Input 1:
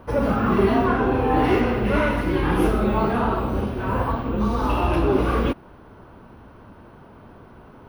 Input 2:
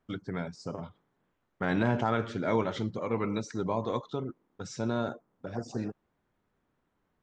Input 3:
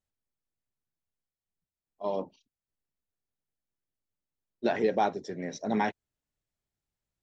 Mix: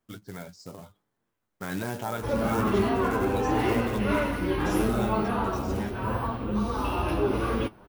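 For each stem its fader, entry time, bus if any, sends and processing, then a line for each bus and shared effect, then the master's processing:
-2.0 dB, 2.15 s, no send, none
-1.0 dB, 0.00 s, no send, short-mantissa float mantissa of 2-bit
-7.0 dB, 0.00 s, no send, none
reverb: none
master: treble shelf 5.3 kHz +8.5 dB; flange 0.8 Hz, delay 8.6 ms, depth 2.4 ms, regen +50%

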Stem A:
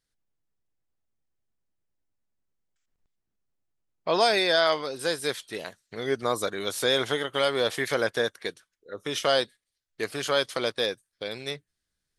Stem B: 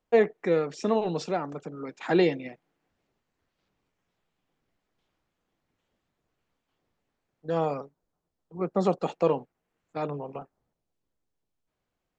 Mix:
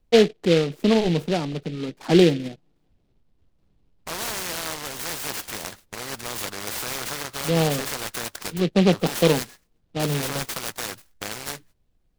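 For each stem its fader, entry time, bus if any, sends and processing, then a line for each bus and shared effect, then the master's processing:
-2.0 dB, 0.00 s, no send, gate -54 dBFS, range -20 dB; spectrum-flattening compressor 4:1
0.0 dB, 0.00 s, no send, tilt EQ -4.5 dB/octave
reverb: none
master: delay time shaken by noise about 2.8 kHz, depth 0.086 ms

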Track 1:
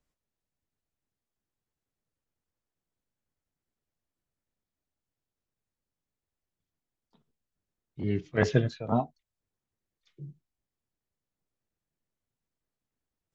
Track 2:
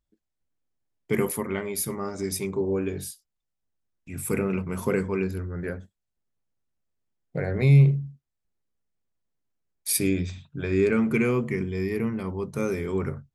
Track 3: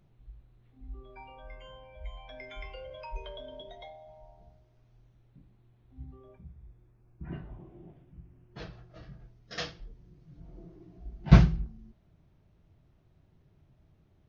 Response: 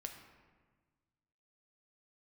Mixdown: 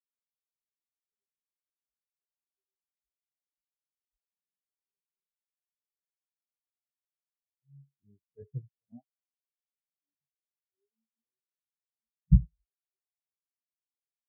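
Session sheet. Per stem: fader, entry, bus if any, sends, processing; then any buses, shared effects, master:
-1.0 dB, 0.00 s, no send, none
-17.0 dB, 0.00 s, no send, none
-4.5 dB, 1.00 s, no send, none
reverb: none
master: spectral contrast expander 4:1

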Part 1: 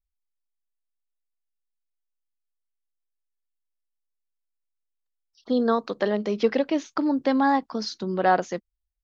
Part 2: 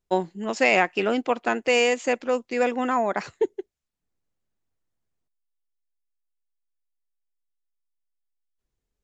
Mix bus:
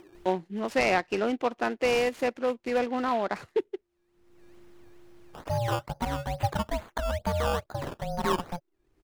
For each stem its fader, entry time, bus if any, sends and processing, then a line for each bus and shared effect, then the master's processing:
-3.0 dB, 0.00 s, no send, treble shelf 5.9 kHz +6.5 dB; ring modulator 350 Hz; decimation with a swept rate 15×, swing 100% 2.3 Hz
-3.5 dB, 0.15 s, no send, delay time shaken by noise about 2.3 kHz, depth 0.032 ms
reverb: none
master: treble shelf 3.2 kHz -8 dB; upward compressor, threshold -27 dBFS

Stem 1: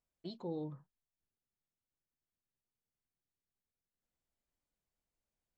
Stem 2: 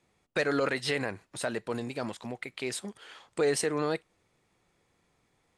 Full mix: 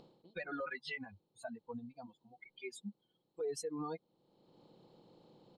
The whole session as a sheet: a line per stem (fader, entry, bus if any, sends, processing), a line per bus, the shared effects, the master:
-7.5 dB, 0.00 s, no send, spectral levelling over time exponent 0.4; reverb removal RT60 0.64 s; upward compressor, threshold -46 dBFS; auto duck -18 dB, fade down 0.30 s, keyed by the second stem
-2.0 dB, 0.00 s, no send, expander on every frequency bin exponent 3; comb 4.1 ms, depth 46%; endless flanger 3.8 ms +0.49 Hz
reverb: none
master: treble shelf 4.3 kHz -7.5 dB; peak limiter -32.5 dBFS, peak gain reduction 10 dB

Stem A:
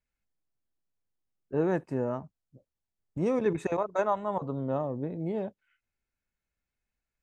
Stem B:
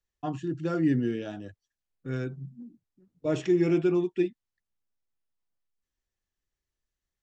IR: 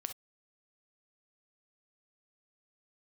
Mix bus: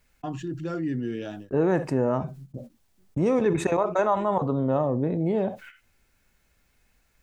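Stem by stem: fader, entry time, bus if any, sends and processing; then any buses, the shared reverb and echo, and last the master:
-0.5 dB, 0.00 s, send -4.5 dB, none
-12.5 dB, 0.00 s, no send, auto duck -13 dB, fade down 0.25 s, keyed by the first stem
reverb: on, pre-delay 3 ms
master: gate -58 dBFS, range -22 dB; level flattener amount 50%

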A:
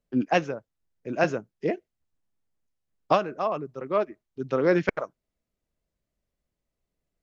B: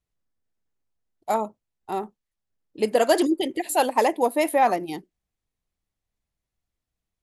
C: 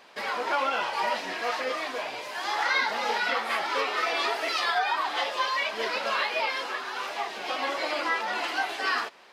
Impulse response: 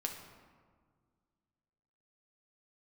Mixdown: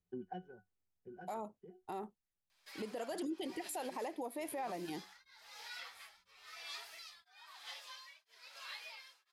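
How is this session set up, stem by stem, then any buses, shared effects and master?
+2.5 dB, 0.00 s, no send, pitch-class resonator F#, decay 0.13 s; compression 6:1, threshold -43 dBFS, peak gain reduction 17.5 dB; auto duck -14 dB, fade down 1.80 s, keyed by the second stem
-8.5 dB, 0.00 s, no send, compression, threshold -24 dBFS, peak gain reduction 10.5 dB
-8.5 dB, 2.50 s, no send, band-stop 2.9 kHz, Q 21; tremolo triangle 1 Hz, depth 100%; differentiator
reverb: none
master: peak limiter -33 dBFS, peak gain reduction 10.5 dB

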